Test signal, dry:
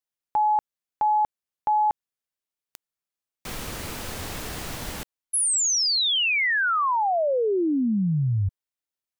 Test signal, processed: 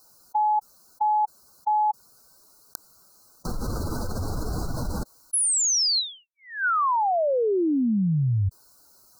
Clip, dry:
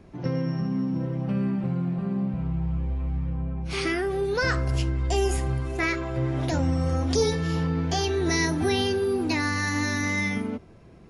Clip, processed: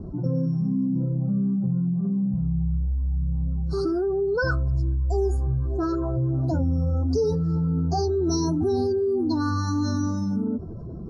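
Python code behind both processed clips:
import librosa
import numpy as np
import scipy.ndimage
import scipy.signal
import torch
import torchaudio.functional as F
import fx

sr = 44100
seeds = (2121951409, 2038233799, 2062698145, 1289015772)

y = fx.spec_expand(x, sr, power=1.7)
y = scipy.signal.sosfilt(scipy.signal.cheby1(5, 1.0, [1500.0, 4100.0], 'bandstop', fs=sr, output='sos'), y)
y = fx.env_flatten(y, sr, amount_pct=50)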